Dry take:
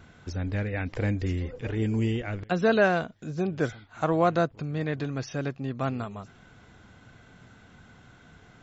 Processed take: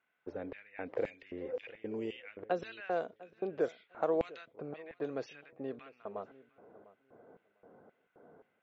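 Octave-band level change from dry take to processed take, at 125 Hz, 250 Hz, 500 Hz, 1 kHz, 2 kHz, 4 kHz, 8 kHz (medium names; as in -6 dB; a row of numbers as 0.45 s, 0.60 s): -25.5 dB, -14.0 dB, -8.0 dB, -11.0 dB, -15.0 dB, -13.5 dB, no reading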